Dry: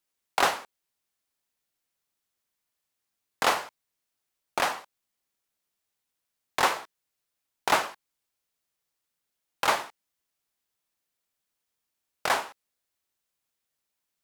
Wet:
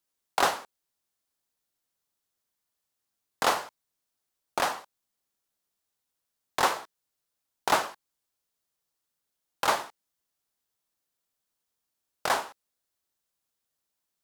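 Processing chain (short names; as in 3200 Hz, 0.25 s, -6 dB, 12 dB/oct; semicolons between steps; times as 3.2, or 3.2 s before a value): bell 2300 Hz -4.5 dB 0.86 oct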